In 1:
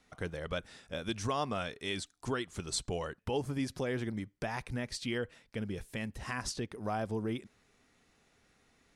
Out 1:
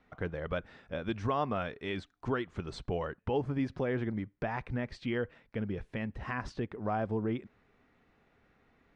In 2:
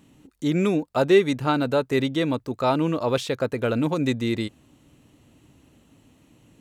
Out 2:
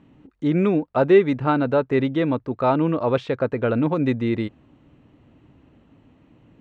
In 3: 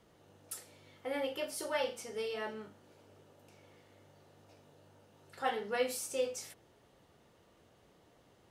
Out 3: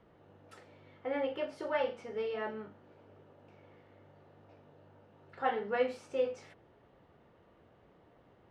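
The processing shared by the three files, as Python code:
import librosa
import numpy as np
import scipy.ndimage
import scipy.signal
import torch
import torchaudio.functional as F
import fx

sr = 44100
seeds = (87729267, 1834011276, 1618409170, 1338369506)

y = scipy.signal.sosfilt(scipy.signal.butter(2, 2100.0, 'lowpass', fs=sr, output='sos'), x)
y = F.gain(torch.from_numpy(y), 2.5).numpy()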